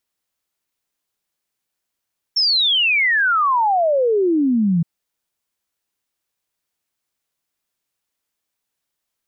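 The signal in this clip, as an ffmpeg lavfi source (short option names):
-f lavfi -i "aevalsrc='0.211*clip(min(t,2.47-t)/0.01,0,1)*sin(2*PI*5500*2.47/log(160/5500)*(exp(log(160/5500)*t/2.47)-1))':d=2.47:s=44100"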